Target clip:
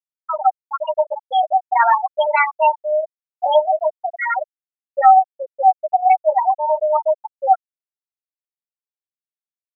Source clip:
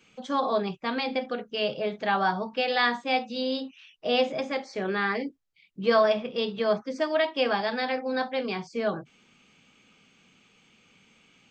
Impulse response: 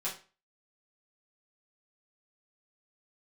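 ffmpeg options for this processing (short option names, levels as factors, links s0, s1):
-filter_complex "[0:a]aeval=exprs='val(0)+0.5*0.015*sgn(val(0))':c=same,asetrate=52038,aresample=44100,lowshelf=f=510:t=q:w=3:g=-11,acrossover=split=130[s0][s1];[s1]dynaudnorm=f=150:g=7:m=2.51[s2];[s0][s2]amix=inputs=2:normalize=0,asplit=2[s3][s4];[s4]adelay=13,volume=0.422[s5];[s3][s5]amix=inputs=2:normalize=0,asubboost=boost=8:cutoff=69,afftfilt=real='re*gte(hypot(re,im),0.708)':imag='im*gte(hypot(re,im),0.708)':win_size=1024:overlap=0.75,lowpass=3300,asplit=2[s6][s7];[s7]acompressor=threshold=0.0501:ratio=6,volume=0.708[s8];[s6][s8]amix=inputs=2:normalize=0,volume=0.891"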